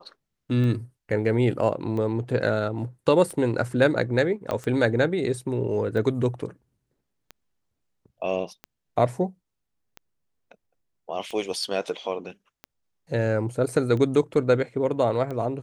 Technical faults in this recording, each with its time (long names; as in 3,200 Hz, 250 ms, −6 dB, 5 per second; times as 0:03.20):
scratch tick 45 rpm −22 dBFS
0:04.51: click −14 dBFS